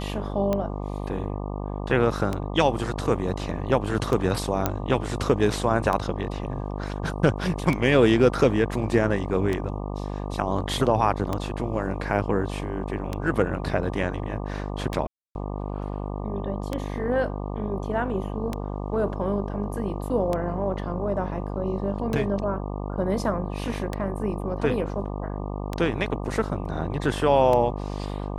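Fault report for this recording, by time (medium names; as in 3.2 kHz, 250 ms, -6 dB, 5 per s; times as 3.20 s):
buzz 50 Hz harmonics 24 -31 dBFS
tick 33 1/3 rpm -13 dBFS
4.66 s: pop -7 dBFS
15.07–15.35 s: dropout 281 ms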